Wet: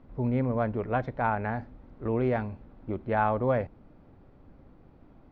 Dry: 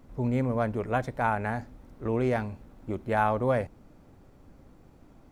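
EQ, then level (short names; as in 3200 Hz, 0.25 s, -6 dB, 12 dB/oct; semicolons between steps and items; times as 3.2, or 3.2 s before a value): LPF 4600 Hz 24 dB/oct; high shelf 3600 Hz -10.5 dB; 0.0 dB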